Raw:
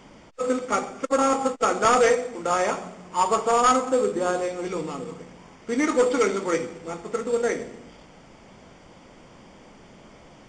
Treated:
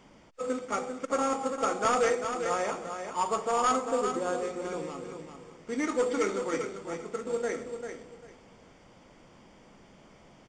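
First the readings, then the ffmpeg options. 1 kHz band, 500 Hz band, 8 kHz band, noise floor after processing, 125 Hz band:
-6.5 dB, -7.0 dB, -6.5 dB, -57 dBFS, -7.0 dB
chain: -af "aecho=1:1:395|790|1185:0.422|0.0886|0.0186,volume=-7.5dB"

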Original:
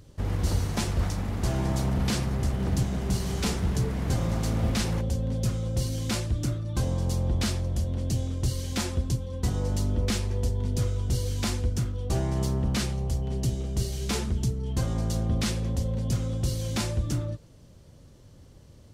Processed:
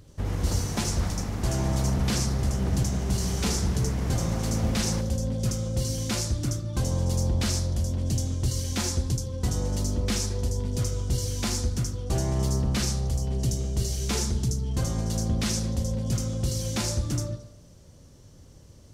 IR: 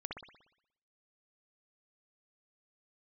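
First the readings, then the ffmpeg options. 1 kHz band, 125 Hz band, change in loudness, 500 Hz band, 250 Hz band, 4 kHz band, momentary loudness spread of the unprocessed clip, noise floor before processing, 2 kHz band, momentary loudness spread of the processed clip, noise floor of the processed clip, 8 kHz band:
+0.5 dB, +0.5 dB, +1.0 dB, +0.5 dB, +0.5 dB, +2.5 dB, 3 LU, -52 dBFS, 0.0 dB, 3 LU, -51 dBFS, +5.5 dB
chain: -filter_complex "[0:a]asplit=2[a][b];[b]highshelf=f=4k:t=q:w=3:g=13.5[c];[1:a]atrim=start_sample=2205,adelay=78[d];[c][d]afir=irnorm=-1:irlink=0,volume=-10.5dB[e];[a][e]amix=inputs=2:normalize=0"

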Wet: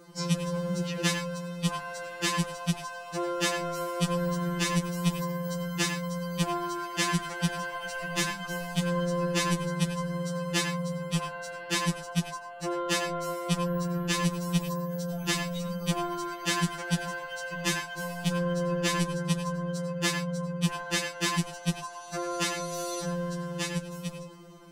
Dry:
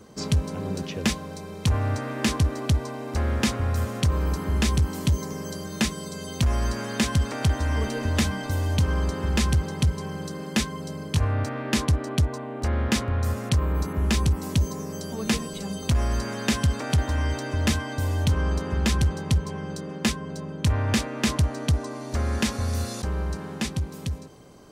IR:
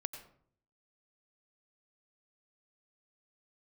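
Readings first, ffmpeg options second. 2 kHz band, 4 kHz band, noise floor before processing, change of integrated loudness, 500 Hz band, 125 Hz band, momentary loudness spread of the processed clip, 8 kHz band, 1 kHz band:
0.0 dB, -1.0 dB, -37 dBFS, -4.0 dB, 0.0 dB, -8.0 dB, 6 LU, -1.0 dB, +0.5 dB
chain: -filter_complex "[1:a]atrim=start_sample=2205,afade=t=out:st=0.17:d=0.01,atrim=end_sample=7938[a];[0:a][a]afir=irnorm=-1:irlink=0,afftfilt=real='re*2.83*eq(mod(b,8),0)':imag='im*2.83*eq(mod(b,8),0)':win_size=2048:overlap=0.75,volume=2.5dB"

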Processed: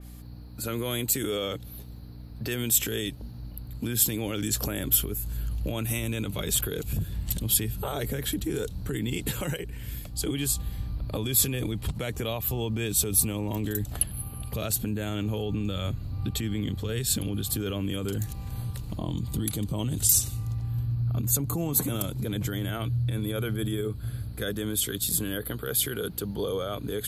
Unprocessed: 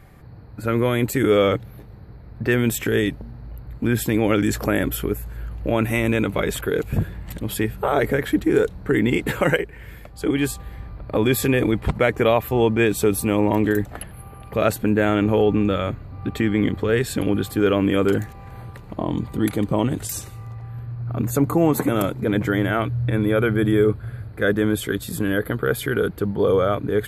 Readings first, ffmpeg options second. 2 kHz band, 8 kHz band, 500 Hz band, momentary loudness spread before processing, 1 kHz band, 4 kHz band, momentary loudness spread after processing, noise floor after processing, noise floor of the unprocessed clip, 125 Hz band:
-13.0 dB, +6.5 dB, -14.0 dB, 14 LU, -14.0 dB, 0.0 dB, 11 LU, -41 dBFS, -41 dBFS, -5.0 dB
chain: -filter_complex "[0:a]acrossover=split=170|1100|2800[a][b][c][d];[a]dynaudnorm=f=880:g=11:m=13dB[e];[e][b][c][d]amix=inputs=4:normalize=0,aeval=exprs='val(0)+0.0178*(sin(2*PI*60*n/s)+sin(2*PI*2*60*n/s)/2+sin(2*PI*3*60*n/s)/3+sin(2*PI*4*60*n/s)/4+sin(2*PI*5*60*n/s)/5)':c=same,alimiter=limit=-14dB:level=0:latency=1:release=144,aexciter=amount=5.2:drive=6.5:freq=2.9k,adynamicequalizer=threshold=0.02:dfrequency=3300:dqfactor=0.7:tfrequency=3300:tqfactor=0.7:attack=5:release=100:ratio=0.375:range=2:mode=cutabove:tftype=highshelf,volume=-7.5dB"

